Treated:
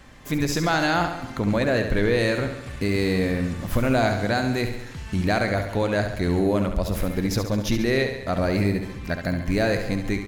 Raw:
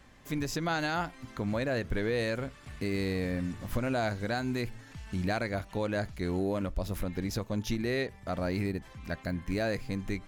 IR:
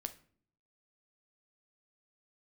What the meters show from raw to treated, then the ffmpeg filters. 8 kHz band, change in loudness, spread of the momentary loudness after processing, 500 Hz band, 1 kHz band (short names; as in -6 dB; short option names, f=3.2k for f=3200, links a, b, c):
+9.5 dB, +9.5 dB, 6 LU, +9.5 dB, +9.5 dB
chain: -af "aecho=1:1:69|138|207|276|345|414|483:0.398|0.235|0.139|0.0818|0.0482|0.0285|0.0168,volume=8.5dB"